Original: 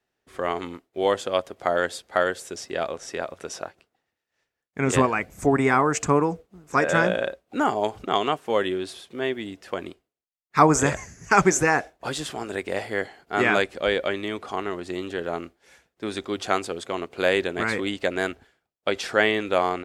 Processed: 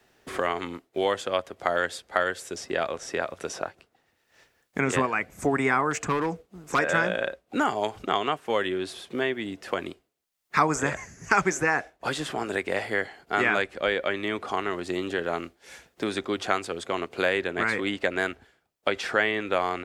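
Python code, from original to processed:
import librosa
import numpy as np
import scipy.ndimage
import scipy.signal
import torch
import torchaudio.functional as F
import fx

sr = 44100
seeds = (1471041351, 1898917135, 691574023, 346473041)

y = fx.clip_hard(x, sr, threshold_db=-19.0, at=(5.91, 6.79))
y = fx.dynamic_eq(y, sr, hz=1800.0, q=0.79, threshold_db=-37.0, ratio=4.0, max_db=5)
y = fx.band_squash(y, sr, depth_pct=70)
y = F.gain(torch.from_numpy(y), -4.5).numpy()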